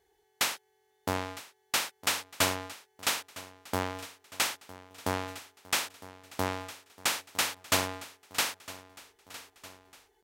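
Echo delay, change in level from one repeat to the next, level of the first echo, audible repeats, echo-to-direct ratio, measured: 958 ms, −5.0 dB, −17.5 dB, 4, −16.0 dB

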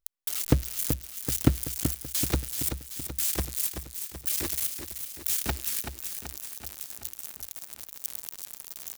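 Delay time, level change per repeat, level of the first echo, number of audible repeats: 381 ms, −4.5 dB, −8.0 dB, 6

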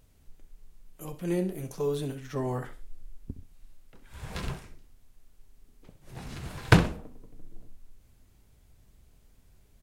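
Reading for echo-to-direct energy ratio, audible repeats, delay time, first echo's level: −14.0 dB, 2, 65 ms, −14.5 dB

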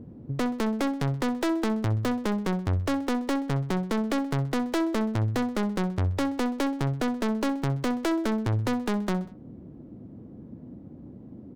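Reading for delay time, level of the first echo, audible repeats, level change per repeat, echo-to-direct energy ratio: 64 ms, −17.5 dB, 3, −5.5 dB, −16.0 dB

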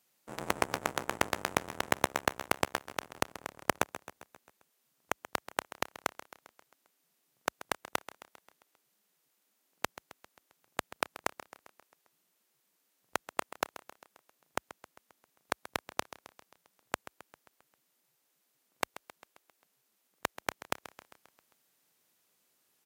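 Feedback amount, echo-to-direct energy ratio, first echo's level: 57%, −13.5 dB, −15.0 dB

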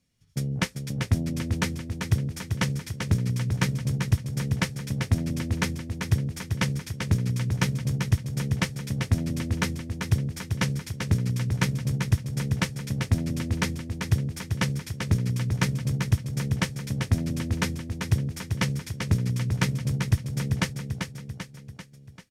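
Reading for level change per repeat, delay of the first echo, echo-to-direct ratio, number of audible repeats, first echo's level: −5.5 dB, 391 ms, −4.5 dB, 5, −6.0 dB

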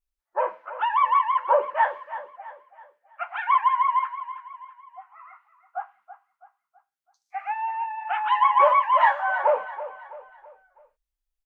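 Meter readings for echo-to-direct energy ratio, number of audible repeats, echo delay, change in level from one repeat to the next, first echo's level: −12.5 dB, 3, 328 ms, −7.5 dB, −13.5 dB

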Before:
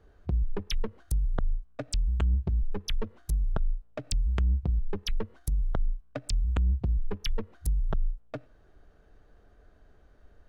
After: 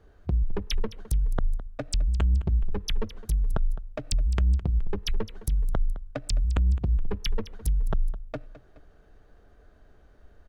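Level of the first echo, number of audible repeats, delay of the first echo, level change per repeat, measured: −16.0 dB, 2, 211 ms, −6.5 dB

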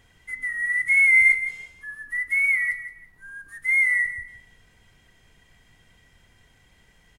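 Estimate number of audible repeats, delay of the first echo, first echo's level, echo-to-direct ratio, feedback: 2, 168 ms, −11.0 dB, −10.5 dB, 24%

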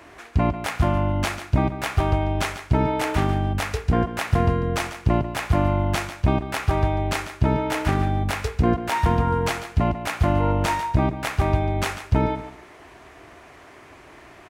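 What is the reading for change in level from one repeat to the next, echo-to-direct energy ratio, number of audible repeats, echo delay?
−13.0 dB, −12.0 dB, 2, 144 ms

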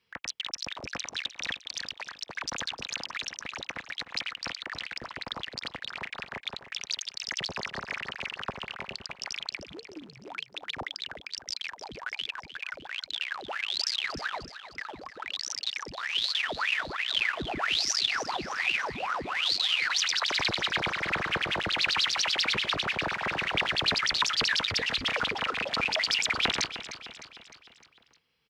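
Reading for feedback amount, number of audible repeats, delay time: 53%, 4, 305 ms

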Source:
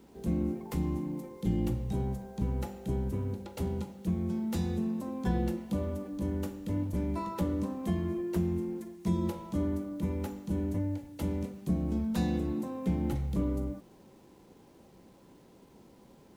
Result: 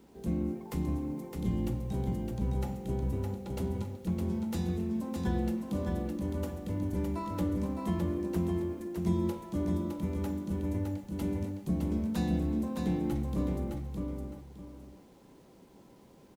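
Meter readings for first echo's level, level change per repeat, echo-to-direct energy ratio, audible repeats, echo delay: −4.5 dB, −11.5 dB, −4.0 dB, 2, 612 ms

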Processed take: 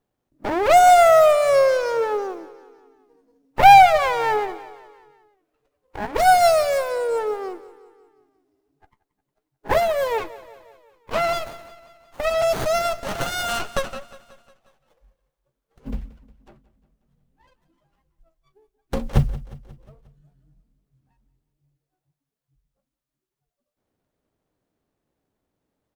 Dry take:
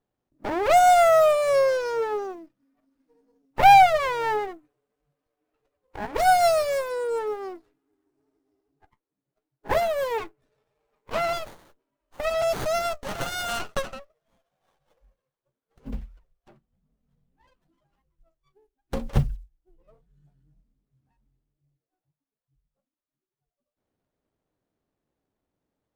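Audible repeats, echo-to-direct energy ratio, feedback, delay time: 4, −16.5 dB, 56%, 179 ms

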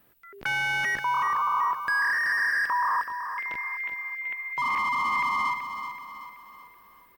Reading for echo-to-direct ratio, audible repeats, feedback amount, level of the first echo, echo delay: −7.5 dB, 4, 46%, −8.5 dB, 379 ms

